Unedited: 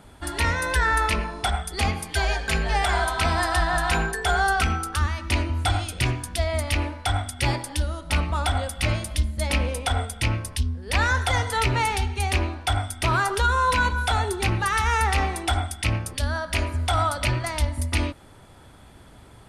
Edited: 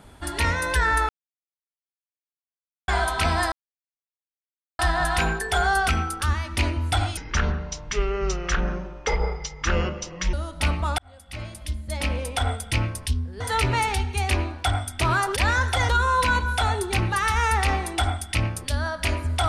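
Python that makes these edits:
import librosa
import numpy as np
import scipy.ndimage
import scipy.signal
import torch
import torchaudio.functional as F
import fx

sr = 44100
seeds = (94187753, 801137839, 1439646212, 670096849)

y = fx.edit(x, sr, fx.silence(start_s=1.09, length_s=1.79),
    fx.insert_silence(at_s=3.52, length_s=1.27),
    fx.speed_span(start_s=5.9, length_s=1.93, speed=0.61),
    fx.fade_in_span(start_s=8.48, length_s=1.5),
    fx.move(start_s=10.9, length_s=0.53, to_s=13.39), tone=tone)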